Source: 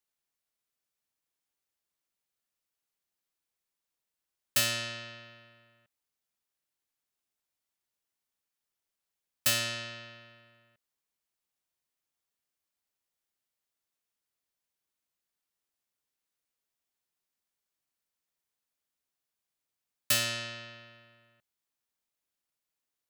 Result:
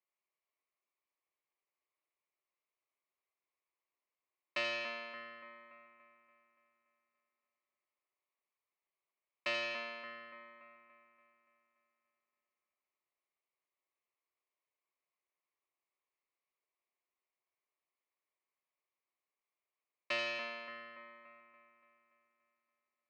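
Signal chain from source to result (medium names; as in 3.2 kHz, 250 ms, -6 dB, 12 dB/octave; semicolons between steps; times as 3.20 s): cabinet simulation 360–3600 Hz, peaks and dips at 370 Hz +7 dB, 590 Hz +5 dB, 1.1 kHz +10 dB, 1.5 kHz -9 dB, 2.2 kHz +8 dB, 3.4 kHz -8 dB; two-band feedback delay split 2 kHz, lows 287 ms, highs 82 ms, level -6 dB; trim -5 dB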